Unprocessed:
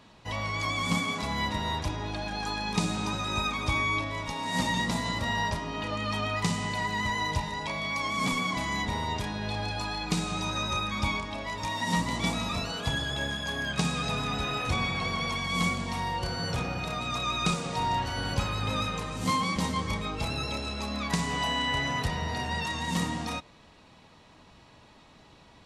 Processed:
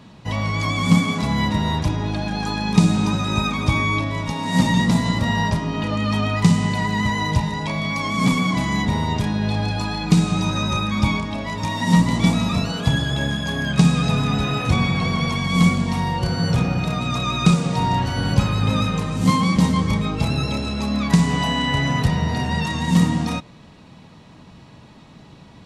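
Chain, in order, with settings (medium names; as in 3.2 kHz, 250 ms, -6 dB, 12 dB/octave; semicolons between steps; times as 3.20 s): peaking EQ 160 Hz +11 dB 1.8 oct; trim +5 dB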